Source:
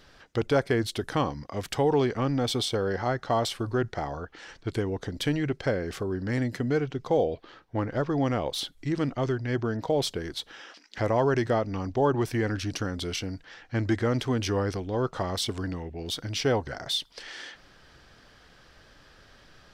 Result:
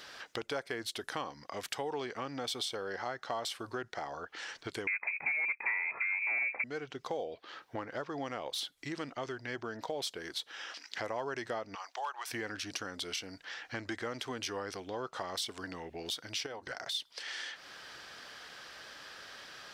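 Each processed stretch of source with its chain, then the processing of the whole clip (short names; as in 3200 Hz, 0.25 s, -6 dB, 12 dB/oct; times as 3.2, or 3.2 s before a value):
4.87–6.64 sample leveller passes 2 + inverted band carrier 2500 Hz
11.75–12.3 HPF 790 Hz 24 dB/oct + overloaded stage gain 22.5 dB
16.46–16.95 notches 50/100/150/200/250/300/350 Hz + compressor 5:1, threshold -30 dBFS + transient shaper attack -2 dB, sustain -8 dB
whole clip: HPF 970 Hz 6 dB/oct; compressor 2.5:1, threshold -51 dBFS; gain +9 dB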